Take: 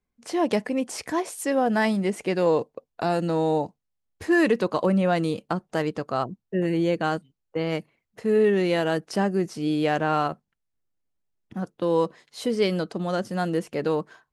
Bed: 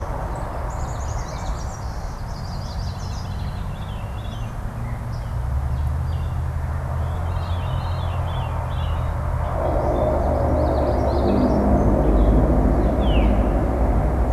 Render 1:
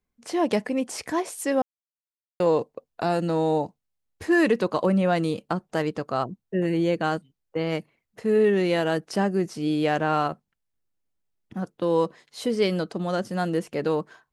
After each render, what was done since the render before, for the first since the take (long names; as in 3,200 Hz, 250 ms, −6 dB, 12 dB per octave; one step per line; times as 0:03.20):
0:01.62–0:02.40: silence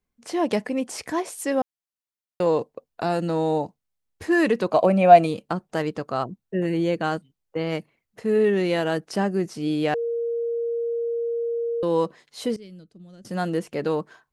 0:04.70–0:05.25: hollow resonant body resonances 680/2,400 Hz, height 15 dB → 18 dB, ringing for 30 ms
0:09.94–0:11.83: beep over 467 Hz −23 dBFS
0:12.56–0:13.25: guitar amp tone stack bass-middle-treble 10-0-1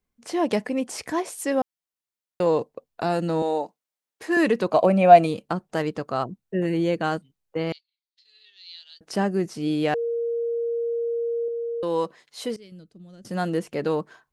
0:03.42–0:04.37: high-pass filter 370 Hz
0:07.72–0:09.01: flat-topped band-pass 4,100 Hz, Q 3.2
0:11.48–0:12.72: low-shelf EQ 360 Hz −7.5 dB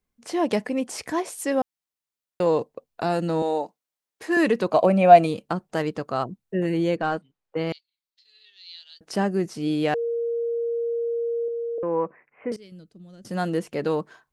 0:06.96–0:07.57: mid-hump overdrive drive 11 dB, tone 1,300 Hz, clips at −12.5 dBFS
0:11.78–0:12.52: Butterworth low-pass 2,500 Hz 96 dB per octave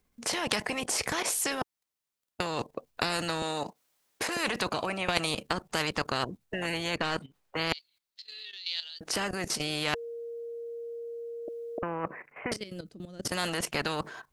output level in coarse steps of 15 dB
every bin compressed towards the loudest bin 4 to 1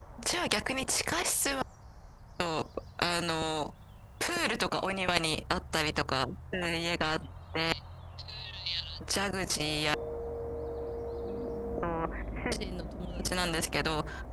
mix in bed −23 dB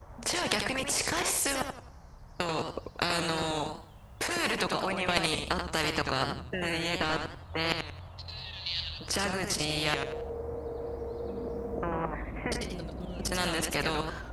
feedback echo with a swinging delay time 89 ms, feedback 31%, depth 136 cents, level −6 dB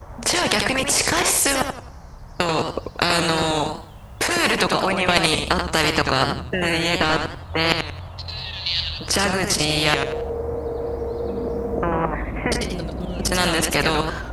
level +10.5 dB
brickwall limiter −2 dBFS, peak gain reduction 3 dB